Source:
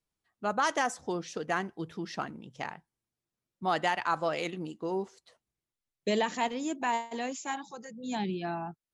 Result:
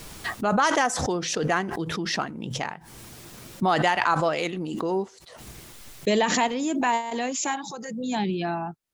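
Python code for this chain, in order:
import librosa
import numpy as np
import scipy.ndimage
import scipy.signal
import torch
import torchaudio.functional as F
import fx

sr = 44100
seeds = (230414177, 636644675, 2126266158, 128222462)

y = fx.pre_swell(x, sr, db_per_s=34.0)
y = y * 10.0 ** (6.0 / 20.0)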